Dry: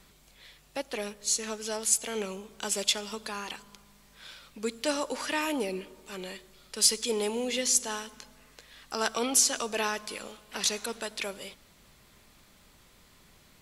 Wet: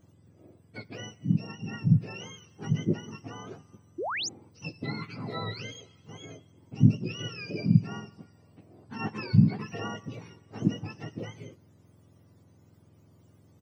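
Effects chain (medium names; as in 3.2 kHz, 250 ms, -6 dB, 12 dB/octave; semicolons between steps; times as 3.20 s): spectrum inverted on a logarithmic axis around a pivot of 1.1 kHz; doubling 19 ms -12.5 dB; painted sound rise, 3.98–4.29 s, 300–7300 Hz -26 dBFS; trim -6 dB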